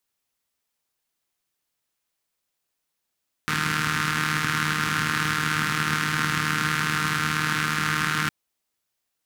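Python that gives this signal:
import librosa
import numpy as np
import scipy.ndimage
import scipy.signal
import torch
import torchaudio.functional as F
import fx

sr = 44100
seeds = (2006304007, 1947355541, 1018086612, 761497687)

y = fx.engine_four(sr, seeds[0], length_s=4.81, rpm=4600, resonances_hz=(140.0, 200.0, 1400.0))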